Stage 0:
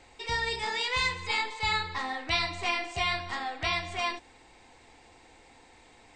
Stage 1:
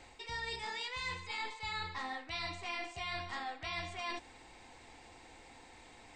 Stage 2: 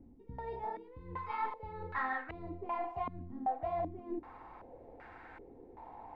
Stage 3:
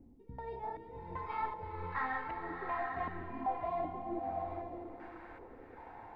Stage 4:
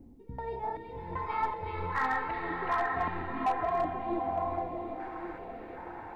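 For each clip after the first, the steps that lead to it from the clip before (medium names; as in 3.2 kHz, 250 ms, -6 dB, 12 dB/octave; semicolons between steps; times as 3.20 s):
peaking EQ 440 Hz -2.5 dB 0.36 oct; reverse; compression 6:1, threshold -38 dBFS, peak gain reduction 14 dB; reverse
step-sequenced low-pass 2.6 Hz 250–1500 Hz; trim +1.5 dB
swelling reverb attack 850 ms, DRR 2 dB; trim -1.5 dB
repeats whose band climbs or falls 373 ms, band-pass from 3.2 kHz, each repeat -1.4 oct, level -1 dB; overload inside the chain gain 28 dB; trim +6 dB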